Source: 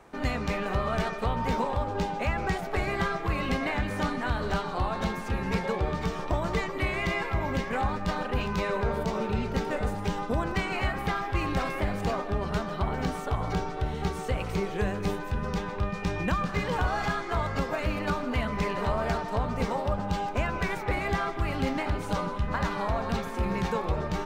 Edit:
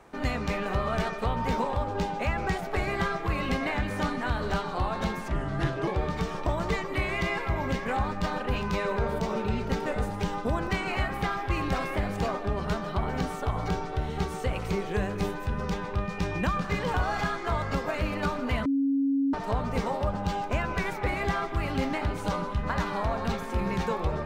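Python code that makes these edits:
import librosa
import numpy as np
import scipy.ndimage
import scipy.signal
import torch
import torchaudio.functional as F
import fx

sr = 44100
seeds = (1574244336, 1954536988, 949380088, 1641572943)

y = fx.edit(x, sr, fx.speed_span(start_s=5.28, length_s=0.44, speed=0.74),
    fx.bleep(start_s=18.5, length_s=0.68, hz=275.0, db=-22.0), tone=tone)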